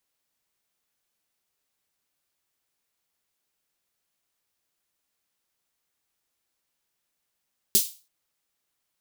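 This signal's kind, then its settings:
synth snare length 0.33 s, tones 220 Hz, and 390 Hz, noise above 3,500 Hz, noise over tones 11.5 dB, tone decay 0.10 s, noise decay 0.33 s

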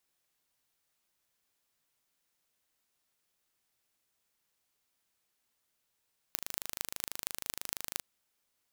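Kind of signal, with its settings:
impulse train 26.1 per second, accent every 6, −4.5 dBFS 1.68 s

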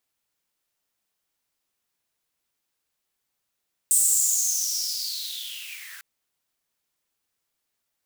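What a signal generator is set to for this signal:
filter sweep on noise white, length 2.10 s highpass, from 8,300 Hz, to 1,500 Hz, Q 8.1, linear, gain ramp −20.5 dB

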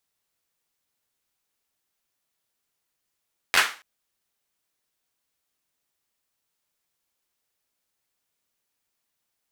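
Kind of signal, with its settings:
synth clap length 0.28 s, apart 11 ms, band 1,700 Hz, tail 0.35 s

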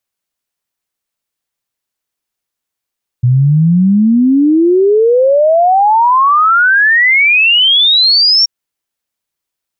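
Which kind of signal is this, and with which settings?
exponential sine sweep 120 Hz → 5,600 Hz 5.23 s −5.5 dBFS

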